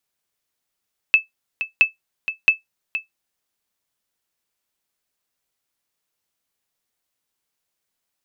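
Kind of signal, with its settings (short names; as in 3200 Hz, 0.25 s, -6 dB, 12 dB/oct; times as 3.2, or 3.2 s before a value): sonar ping 2620 Hz, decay 0.14 s, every 0.67 s, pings 3, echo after 0.47 s, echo -11.5 dB -4 dBFS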